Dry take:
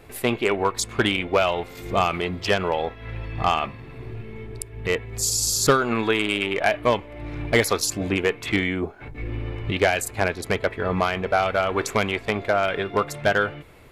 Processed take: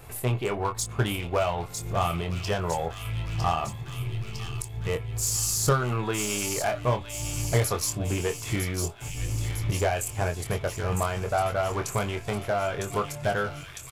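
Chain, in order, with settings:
octave-band graphic EQ 125/250/500/2,000/4,000 Hz +9/−9/−3/−9/−7 dB
in parallel at −11 dB: wave folding −25 dBFS
on the sum: double-tracking delay 24 ms −6.5 dB
delay with a high-pass on its return 955 ms, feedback 61%, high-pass 2,600 Hz, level −5 dB
one half of a high-frequency compander encoder only
level −3 dB

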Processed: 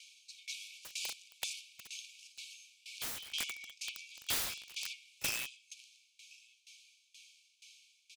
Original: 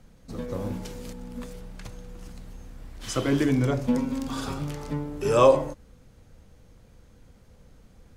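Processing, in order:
phase distortion by the signal itself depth 0.052 ms
high-shelf EQ 3,300 Hz +3 dB
downward compressor 8 to 1, threshold −29 dBFS, peak gain reduction 17 dB
gain into a clipping stage and back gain 24 dB
linear-phase brick-wall high-pass 2,200 Hz
high-frequency loss of the air 69 metres
single-tap delay 1,096 ms −23.5 dB
wrap-around overflow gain 43 dB
tremolo with a ramp in dB decaying 2.1 Hz, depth 21 dB
level +18 dB

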